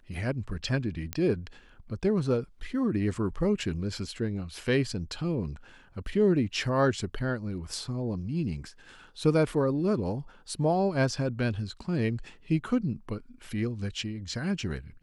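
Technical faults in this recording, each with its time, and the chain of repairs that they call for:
0:01.13: click −15 dBFS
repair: click removal

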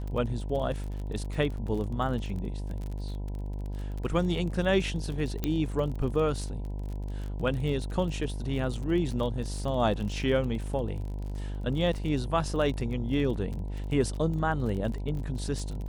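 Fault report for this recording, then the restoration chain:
mains buzz 50 Hz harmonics 20 −34 dBFS
surface crackle 34 per second −35 dBFS
0:05.44: click −14 dBFS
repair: click removal
hum removal 50 Hz, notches 20

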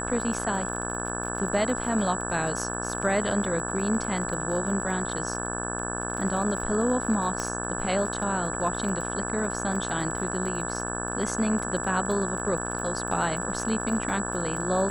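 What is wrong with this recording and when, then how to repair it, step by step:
mains buzz 60 Hz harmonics 29 −33 dBFS
surface crackle 35 per second −33 dBFS
whistle 7,800 Hz −34 dBFS
0:07.40: click −16 dBFS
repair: click removal
notch filter 7,800 Hz, Q 30
hum removal 60 Hz, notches 29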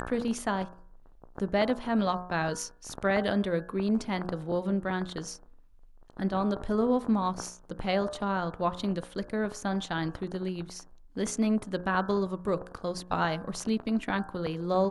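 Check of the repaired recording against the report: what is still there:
none of them is left

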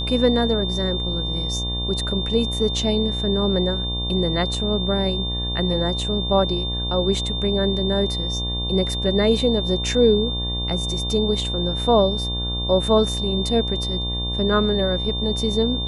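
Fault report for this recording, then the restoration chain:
mains buzz 60 Hz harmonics 19 −27 dBFS
whistle 3,600 Hz −26 dBFS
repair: hum removal 60 Hz, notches 19
notch filter 3,600 Hz, Q 30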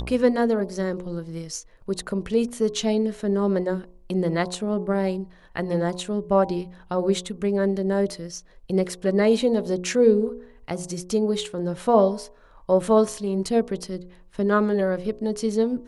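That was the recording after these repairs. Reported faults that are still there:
none of them is left

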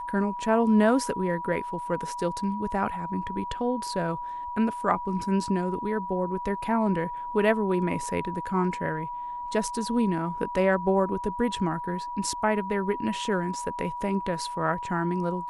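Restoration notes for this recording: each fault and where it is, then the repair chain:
whistle 970 Hz −32 dBFS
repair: notch filter 970 Hz, Q 30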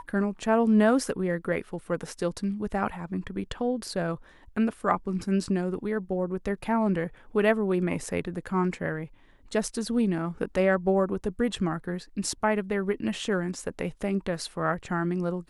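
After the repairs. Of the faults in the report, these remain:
none of them is left

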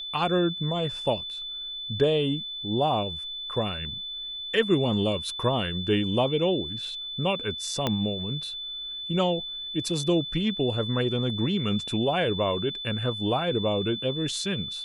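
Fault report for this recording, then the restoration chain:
whistle 3,500 Hz −33 dBFS
0:07.87: click −11 dBFS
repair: click removal
notch filter 3,500 Hz, Q 30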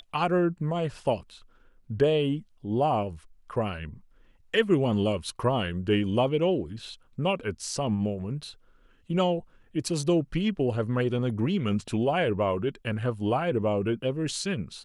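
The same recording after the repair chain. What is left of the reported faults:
0:07.87: click

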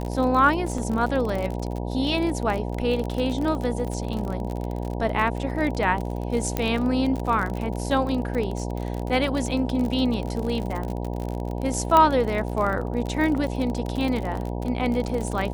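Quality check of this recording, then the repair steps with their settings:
mains buzz 60 Hz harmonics 16 −29 dBFS
surface crackle 43 per second −27 dBFS
0:00.78: drop-out 3.4 ms
0:06.57: click −10 dBFS
0:11.97: click −7 dBFS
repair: click removal
hum removal 60 Hz, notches 16
repair the gap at 0:00.78, 3.4 ms

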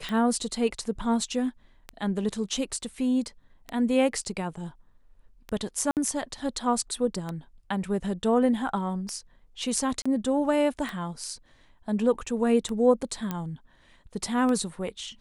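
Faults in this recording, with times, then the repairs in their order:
scratch tick 33 1/3 rpm −19 dBFS
0:05.91–0:05.97: drop-out 58 ms
0:10.02–0:10.05: drop-out 35 ms
0:13.31: click −16 dBFS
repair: click removal
repair the gap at 0:05.91, 58 ms
repair the gap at 0:10.02, 35 ms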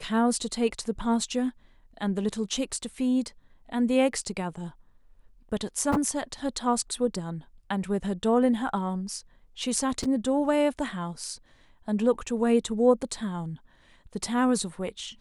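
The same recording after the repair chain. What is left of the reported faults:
none of them is left

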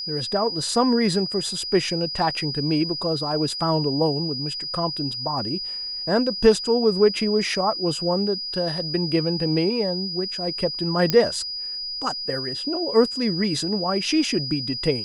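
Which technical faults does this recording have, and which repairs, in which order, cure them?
whistle 4,900 Hz −28 dBFS
0:11.10: click −6 dBFS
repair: click removal
notch filter 4,900 Hz, Q 30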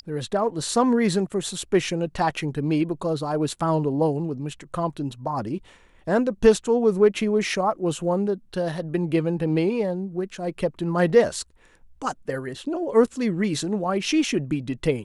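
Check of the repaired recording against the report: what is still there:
none of them is left

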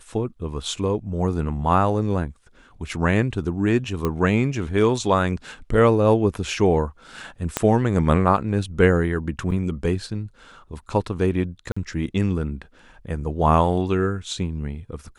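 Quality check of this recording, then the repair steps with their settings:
0:04.05: click −11 dBFS
0:07.57: click −5 dBFS
0:09.51–0:09.52: drop-out 6.4 ms
0:11.72–0:11.77: drop-out 45 ms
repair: click removal
repair the gap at 0:09.51, 6.4 ms
repair the gap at 0:11.72, 45 ms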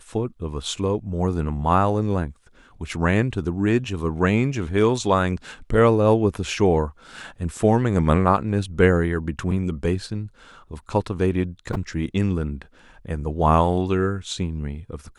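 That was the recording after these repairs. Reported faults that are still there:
0:07.57: click

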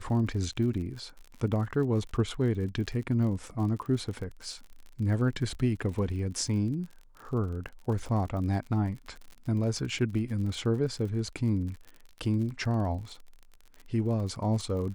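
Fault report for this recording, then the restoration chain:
surface crackle 47 per second −38 dBFS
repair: click removal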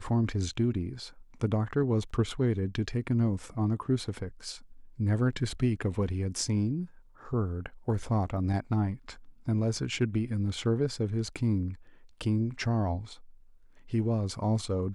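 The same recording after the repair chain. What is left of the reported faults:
none of them is left

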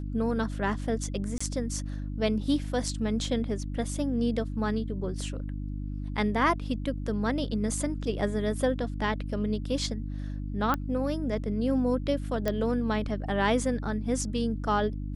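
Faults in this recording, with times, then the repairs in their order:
mains hum 50 Hz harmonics 6 −34 dBFS
0:01.38–0:01.41: drop-out 25 ms
0:10.74: click −14 dBFS
0:12.48: click −14 dBFS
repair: click removal
hum removal 50 Hz, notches 6
repair the gap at 0:01.38, 25 ms

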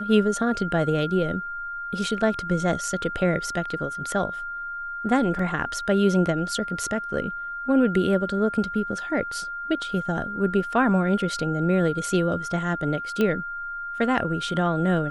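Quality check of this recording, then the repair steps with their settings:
whistle 1,400 Hz −30 dBFS
0:05.39: drop-out 3.7 ms
0:13.21: click −12 dBFS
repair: click removal
notch filter 1,400 Hz, Q 30
repair the gap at 0:05.39, 3.7 ms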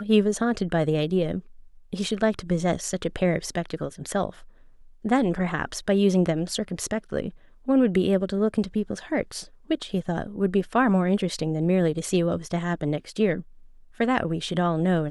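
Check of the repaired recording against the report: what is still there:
0:13.21: click

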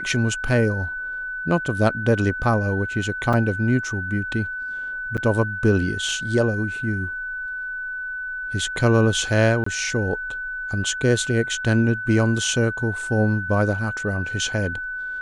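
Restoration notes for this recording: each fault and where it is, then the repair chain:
whistle 1,500 Hz −27 dBFS
0:03.33: drop-out 4.7 ms
0:05.17–0:05.18: drop-out 7.5 ms
0:09.64–0:09.66: drop-out 24 ms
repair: notch filter 1,500 Hz, Q 30
repair the gap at 0:03.33, 4.7 ms
repair the gap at 0:05.17, 7.5 ms
repair the gap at 0:09.64, 24 ms

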